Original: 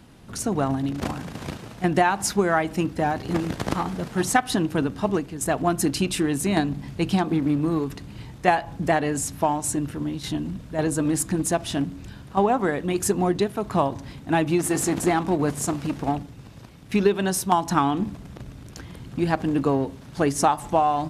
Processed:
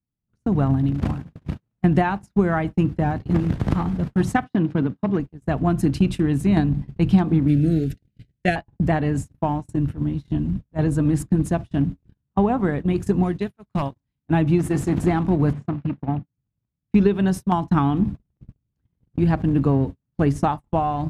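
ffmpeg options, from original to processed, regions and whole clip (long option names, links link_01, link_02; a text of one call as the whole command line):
ffmpeg -i in.wav -filter_complex "[0:a]asettb=1/sr,asplit=3[link_01][link_02][link_03];[link_01]atrim=end=4.444[link_04];[link_02]atrim=start=4.44:end=5.2,asetpts=PTS-STARTPTS,afade=type=in:duration=0.004:curve=qsin,afade=type=out:start_time=0.756:duration=0.004:curve=qsin,bandreject=frequency=2700:width=24,asoftclip=type=hard:threshold=-16dB,highpass=150,lowpass=5200[link_05];[link_03]atrim=start=5.196[link_06];[link_04][link_05]acrossfade=duration=0.004:curve1=hsin:curve2=qsin[link_07];[link_07][link_06]acrossfade=duration=0.004:curve1=qsin:curve2=hsin,asettb=1/sr,asplit=3[link_08][link_09][link_10];[link_08]atrim=end=7.484[link_11];[link_09]atrim=start=7.48:end=8.56,asetpts=PTS-STARTPTS,afade=type=in:duration=0.004:curve=qsin,afade=type=out:start_time=1.076:duration=0.004:curve=qsin,asuperstop=centerf=1000:order=8:qfactor=1.5,highshelf=frequency=2400:gain=11[link_12];[link_10]atrim=start=8.556[link_13];[link_11][link_12]acrossfade=duration=0.004:curve1=hsin:curve2=qsin[link_14];[link_14][link_13]acrossfade=duration=0.004:curve1=qsin:curve2=hsin,asettb=1/sr,asplit=3[link_15][link_16][link_17];[link_15]atrim=end=13.234[link_18];[link_16]atrim=start=13.23:end=14.25,asetpts=PTS-STARTPTS,afade=type=in:duration=0.004:curve=qsin,afade=type=out:start_time=1.016:duration=0.004:curve=qsin,tiltshelf=frequency=1300:gain=-5.5,aeval=exprs='0.168*(abs(mod(val(0)/0.168+3,4)-2)-1)':channel_layout=same[link_19];[link_17]atrim=start=14.246[link_20];[link_18][link_19]acrossfade=duration=0.004:curve1=hsin:curve2=qsin[link_21];[link_21][link_20]acrossfade=duration=0.004:curve1=qsin:curve2=hsin,asettb=1/sr,asplit=3[link_22][link_23][link_24];[link_22]atrim=end=15.534[link_25];[link_23]atrim=start=15.53:end=16.37,asetpts=PTS-STARTPTS,afade=type=in:duration=0.004:curve=qsin,afade=type=out:start_time=0.836:duration=0.004:curve=qsin,highpass=110,lowpass=2800,equalizer=frequency=440:width=0.84:gain=-3.5[link_26];[link_24]atrim=start=16.366[link_27];[link_25][link_26]acrossfade=duration=0.004:curve1=hsin:curve2=qsin[link_28];[link_28][link_27]acrossfade=duration=0.004:curve1=qsin:curve2=hsin,bass=frequency=250:gain=14,treble=frequency=4000:gain=-9,agate=range=-44dB:threshold=-21dB:ratio=16:detection=peak,volume=-3dB" out.wav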